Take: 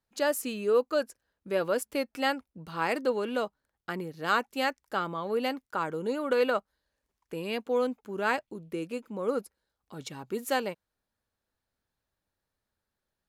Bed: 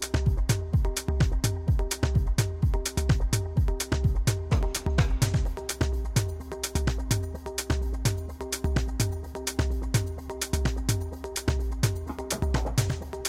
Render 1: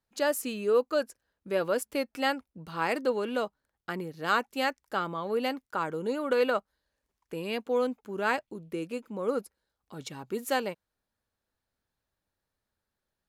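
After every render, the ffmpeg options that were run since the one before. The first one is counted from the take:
ffmpeg -i in.wav -af anull out.wav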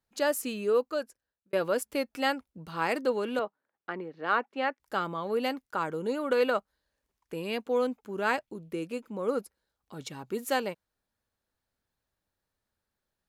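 ffmpeg -i in.wav -filter_complex "[0:a]asettb=1/sr,asplit=3[link_01][link_02][link_03];[link_01]atrim=end=3.394[link_04];[link_02]atrim=start=3.39:end=4.8,asetpts=PTS-STARTPTS,afade=type=in:duration=0.004:curve=qsin,afade=type=out:start_time=1.406:duration=0.004:curve=qsin,highpass=260,lowpass=2300[link_05];[link_03]atrim=start=4.796[link_06];[link_04][link_05]acrossfade=duration=0.004:curve1=hsin:curve2=qsin[link_07];[link_07][link_06]acrossfade=duration=0.004:curve1=qsin:curve2=hsin,asplit=2[link_08][link_09];[link_08]atrim=end=1.53,asetpts=PTS-STARTPTS,afade=type=out:start_time=0.64:duration=0.89[link_10];[link_09]atrim=start=1.53,asetpts=PTS-STARTPTS,afade=type=in:duration=0.004:curve=hsin[link_11];[link_10][link_11]concat=n=2:v=0:a=1" out.wav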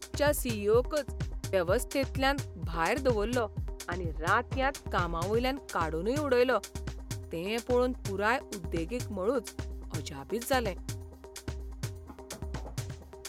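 ffmpeg -i in.wav -i bed.wav -filter_complex "[1:a]volume=-12dB[link_01];[0:a][link_01]amix=inputs=2:normalize=0" out.wav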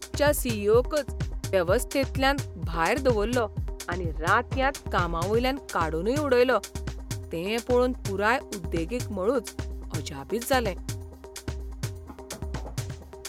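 ffmpeg -i in.wav -af "volume=4.5dB" out.wav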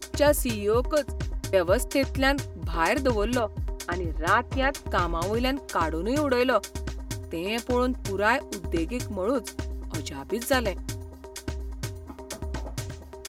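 ffmpeg -i in.wav -af "aecho=1:1:3.2:0.43" out.wav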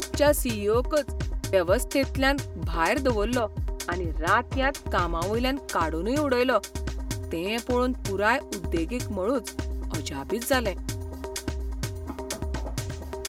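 ffmpeg -i in.wav -af "acompressor=mode=upward:threshold=-25dB:ratio=2.5" out.wav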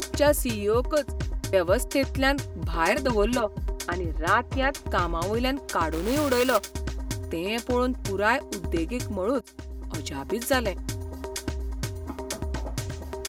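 ffmpeg -i in.wav -filter_complex "[0:a]asettb=1/sr,asplit=3[link_01][link_02][link_03];[link_01]atrim=end=2.864[link_04];[link_02]atrim=start=2.86:end=3.72,asetpts=PTS-STARTPTS,afade=type=in:duration=0.004:curve=qsin,afade=type=out:start_time=0.856:duration=0.004:curve=qsin,aecho=1:1:5.1:0.65,atrim=end_sample=37926[link_05];[link_03]atrim=start=3.716[link_06];[link_04][link_05]acrossfade=duration=0.004:curve1=hsin:curve2=qsin[link_07];[link_07][link_06]acrossfade=duration=0.004:curve1=qsin:curve2=hsin,asettb=1/sr,asplit=3[link_08][link_09][link_10];[link_08]atrim=end=5.924[link_11];[link_09]atrim=start=5.92:end=6.72,asetpts=PTS-STARTPTS,afade=type=in:duration=0.004:curve=qsin,afade=type=out:start_time=0.796:duration=0.004:curve=qsin,acrusher=bits=2:mode=log:mix=0:aa=0.000001[link_12];[link_10]atrim=start=6.716[link_13];[link_11][link_12]acrossfade=duration=0.004:curve1=hsin:curve2=qsin[link_14];[link_14][link_13]acrossfade=duration=0.004:curve1=qsin:curve2=hsin,asplit=2[link_15][link_16];[link_15]atrim=end=9.41,asetpts=PTS-STARTPTS,afade=type=out:start_time=9.406:duration=0.004:curve=hsin:silence=0.141254[link_17];[link_16]atrim=start=9.41,asetpts=PTS-STARTPTS,afade=type=in:duration=0.74:silence=0.141254[link_18];[link_17][link_18]concat=n=2:v=0:a=1" out.wav

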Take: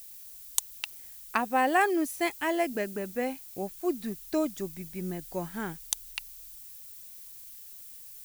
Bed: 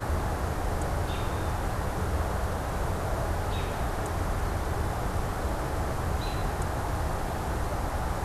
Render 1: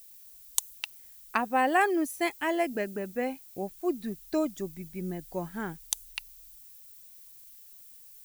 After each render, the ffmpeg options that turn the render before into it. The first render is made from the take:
ffmpeg -i in.wav -af "afftdn=noise_reduction=6:noise_floor=-47" out.wav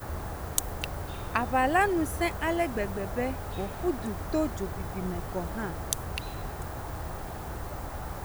ffmpeg -i in.wav -i bed.wav -filter_complex "[1:a]volume=-7dB[link_01];[0:a][link_01]amix=inputs=2:normalize=0" out.wav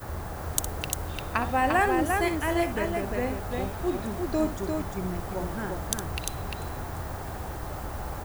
ffmpeg -i in.wav -af "aecho=1:1:61|348:0.316|0.631" out.wav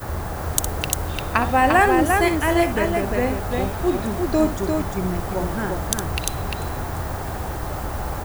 ffmpeg -i in.wav -af "volume=7.5dB,alimiter=limit=-2dB:level=0:latency=1" out.wav

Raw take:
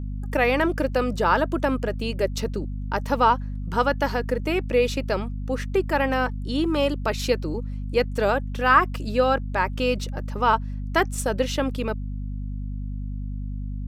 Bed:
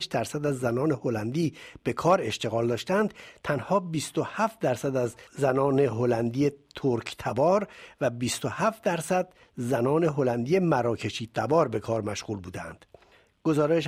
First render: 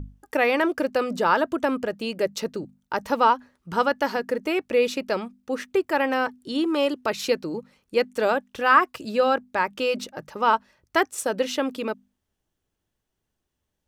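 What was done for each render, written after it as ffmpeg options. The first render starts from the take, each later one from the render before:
ffmpeg -i in.wav -af "bandreject=frequency=50:width_type=h:width=6,bandreject=frequency=100:width_type=h:width=6,bandreject=frequency=150:width_type=h:width=6,bandreject=frequency=200:width_type=h:width=6,bandreject=frequency=250:width_type=h:width=6" out.wav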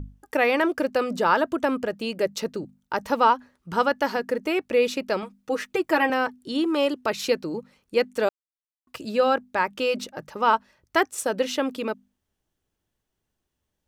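ffmpeg -i in.wav -filter_complex "[0:a]asettb=1/sr,asplit=3[link_01][link_02][link_03];[link_01]atrim=end=5.224[link_04];[link_02]atrim=start=5.22:end=6.1,asetpts=PTS-STARTPTS,afade=type=in:duration=0.004:curve=qsin,afade=type=out:start_time=0.876:duration=0.004:curve=qsin,aecho=1:1:6.3:0.91,atrim=end_sample=38808[link_05];[link_03]atrim=start=6.096[link_06];[link_04][link_05]acrossfade=duration=0.004:curve1=hsin:curve2=qsin[link_07];[link_07][link_06]acrossfade=duration=0.004:curve1=qsin:curve2=hsin,asplit=3[link_08][link_09][link_10];[link_08]atrim=end=8.29,asetpts=PTS-STARTPTS,afade=type=out:start_time=8.286:duration=0.004:curve=hsin[link_11];[link_09]atrim=start=8.29:end=8.87,asetpts=PTS-STARTPTS,volume=0[link_12];[link_10]atrim=start=8.87,asetpts=PTS-STARTPTS,afade=type=in:duration=0.004:curve=hsin[link_13];[link_11][link_12][link_13]concat=n=3:v=0:a=1" out.wav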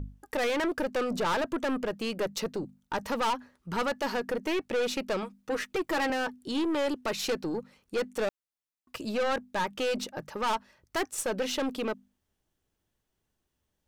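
ffmpeg -i in.wav -af "aeval=exprs='(tanh(17.8*val(0)+0.2)-tanh(0.2))/17.8':channel_layout=same" out.wav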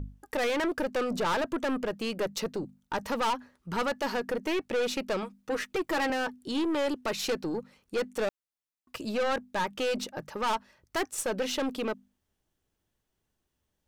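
ffmpeg -i in.wav -af anull out.wav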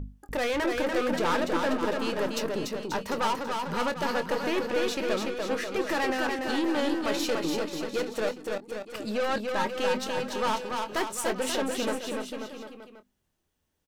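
ffmpeg -i in.wav -filter_complex "[0:a]asplit=2[link_01][link_02];[link_02]adelay=24,volume=-12dB[link_03];[link_01][link_03]amix=inputs=2:normalize=0,asplit=2[link_04][link_05];[link_05]aecho=0:1:290|536.5|746|924.1|1076:0.631|0.398|0.251|0.158|0.1[link_06];[link_04][link_06]amix=inputs=2:normalize=0" out.wav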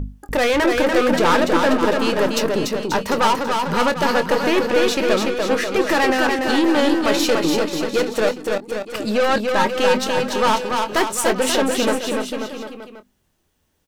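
ffmpeg -i in.wav -af "volume=10.5dB" out.wav

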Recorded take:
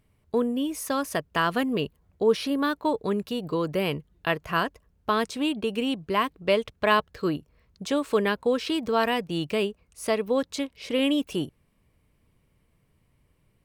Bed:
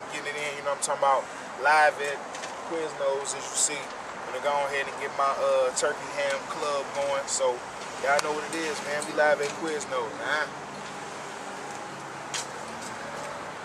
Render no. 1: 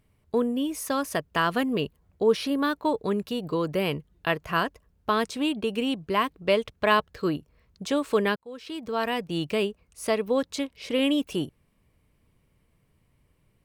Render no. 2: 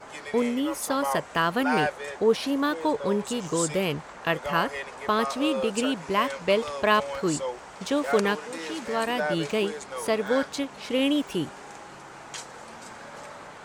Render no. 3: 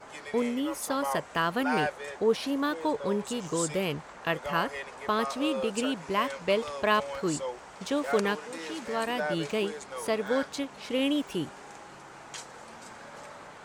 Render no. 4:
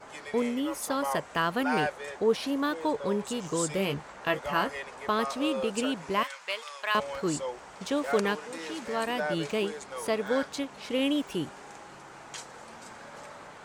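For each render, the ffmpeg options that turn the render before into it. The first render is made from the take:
ffmpeg -i in.wav -filter_complex "[0:a]asplit=2[link_01][link_02];[link_01]atrim=end=8.36,asetpts=PTS-STARTPTS,afade=type=out:start_time=8.356:duration=0.004:curve=hsin[link_03];[link_02]atrim=start=8.36,asetpts=PTS-STARTPTS,afade=type=in:duration=1.02[link_04];[link_03][link_04]concat=n=2:v=0:a=1" out.wav
ffmpeg -i in.wav -i bed.wav -filter_complex "[1:a]volume=-6dB[link_01];[0:a][link_01]amix=inputs=2:normalize=0" out.wav
ffmpeg -i in.wav -af "volume=-3.5dB" out.wav
ffmpeg -i in.wav -filter_complex "[0:a]asettb=1/sr,asplit=3[link_01][link_02][link_03];[link_01]atrim=end=3.764[link_04];[link_02]atrim=start=3.76:end=4.75,asetpts=PTS-STARTPTS,afade=type=in:duration=0.004:curve=qsin,afade=type=out:start_time=0.986:duration=0.004:curve=qsin,asplit=2[link_05][link_06];[link_06]adelay=15,volume=-7.5dB[link_07];[link_05][link_07]amix=inputs=2:normalize=0,atrim=end_sample=43659[link_08];[link_03]atrim=start=4.746[link_09];[link_04][link_08]acrossfade=duration=0.004:curve1=hsin:curve2=qsin[link_10];[link_10][link_09]acrossfade=duration=0.004:curve1=qsin:curve2=hsin,asettb=1/sr,asplit=3[link_11][link_12][link_13];[link_11]atrim=end=6.234[link_14];[link_12]atrim=start=6.23:end=6.95,asetpts=PTS-STARTPTS,afade=type=in:duration=0.004:curve=qsin,afade=type=out:start_time=0.716:duration=0.004:curve=qsin,highpass=1200[link_15];[link_13]atrim=start=6.946[link_16];[link_14][link_15]acrossfade=duration=0.004:curve1=hsin:curve2=qsin[link_17];[link_17][link_16]acrossfade=duration=0.004:curve1=qsin:curve2=hsin" out.wav

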